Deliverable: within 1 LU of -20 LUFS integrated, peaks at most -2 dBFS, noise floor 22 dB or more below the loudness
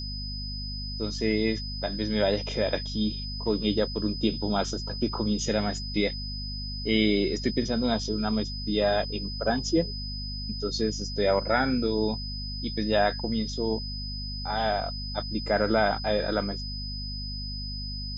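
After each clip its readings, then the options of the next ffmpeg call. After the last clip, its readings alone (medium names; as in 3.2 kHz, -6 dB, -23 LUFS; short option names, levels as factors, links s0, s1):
hum 50 Hz; highest harmonic 250 Hz; hum level -33 dBFS; steady tone 5 kHz; tone level -36 dBFS; loudness -28.0 LUFS; peak level -10.0 dBFS; loudness target -20.0 LUFS
-> -af "bandreject=f=50:t=h:w=6,bandreject=f=100:t=h:w=6,bandreject=f=150:t=h:w=6,bandreject=f=200:t=h:w=6,bandreject=f=250:t=h:w=6"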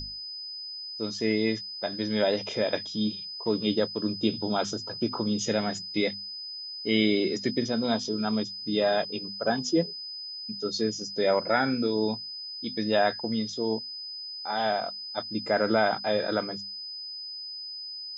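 hum not found; steady tone 5 kHz; tone level -36 dBFS
-> -af "bandreject=f=5000:w=30"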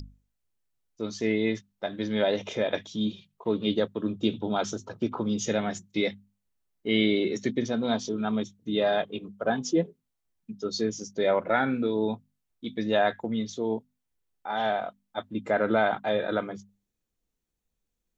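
steady tone not found; loudness -28.5 LUFS; peak level -11.0 dBFS; loudness target -20.0 LUFS
-> -af "volume=2.66"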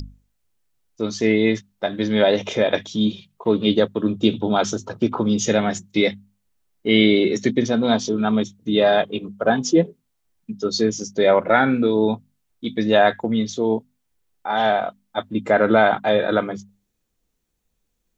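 loudness -20.0 LUFS; peak level -2.5 dBFS; noise floor -73 dBFS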